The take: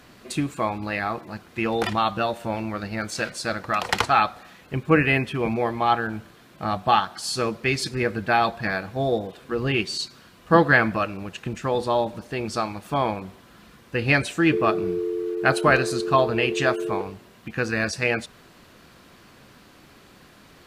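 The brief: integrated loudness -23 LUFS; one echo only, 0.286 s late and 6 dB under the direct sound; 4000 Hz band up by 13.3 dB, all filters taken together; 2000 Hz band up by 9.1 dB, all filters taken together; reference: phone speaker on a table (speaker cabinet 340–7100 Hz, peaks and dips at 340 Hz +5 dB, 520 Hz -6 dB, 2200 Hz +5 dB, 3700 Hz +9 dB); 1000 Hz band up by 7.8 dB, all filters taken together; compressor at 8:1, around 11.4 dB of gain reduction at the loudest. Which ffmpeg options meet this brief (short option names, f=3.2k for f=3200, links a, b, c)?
-af "equalizer=f=1k:t=o:g=8.5,equalizer=f=2k:t=o:g=4,equalizer=f=4k:t=o:g=8.5,acompressor=threshold=-18dB:ratio=8,highpass=f=340:w=0.5412,highpass=f=340:w=1.3066,equalizer=f=340:t=q:w=4:g=5,equalizer=f=520:t=q:w=4:g=-6,equalizer=f=2.2k:t=q:w=4:g=5,equalizer=f=3.7k:t=q:w=4:g=9,lowpass=f=7.1k:w=0.5412,lowpass=f=7.1k:w=1.3066,aecho=1:1:286:0.501,volume=-1dB"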